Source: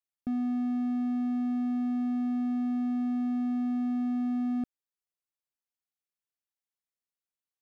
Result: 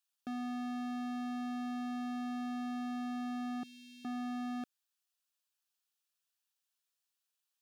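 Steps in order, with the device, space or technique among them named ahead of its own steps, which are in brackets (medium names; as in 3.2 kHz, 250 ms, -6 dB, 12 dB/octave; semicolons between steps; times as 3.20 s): 3.63–4.05 s: elliptic band-stop 170–2700 Hz, stop band 40 dB; peaking EQ 2.1 kHz -14 dB 0.22 oct; filter by subtraction (in parallel: low-pass 2.4 kHz 12 dB/octave + polarity flip); on the sum: trim +7 dB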